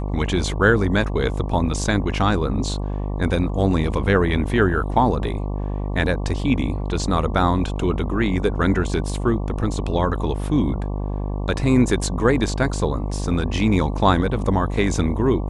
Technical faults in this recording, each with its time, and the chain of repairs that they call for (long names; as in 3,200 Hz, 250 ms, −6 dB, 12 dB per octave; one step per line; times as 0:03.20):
mains buzz 50 Hz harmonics 23 −25 dBFS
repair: hum removal 50 Hz, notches 23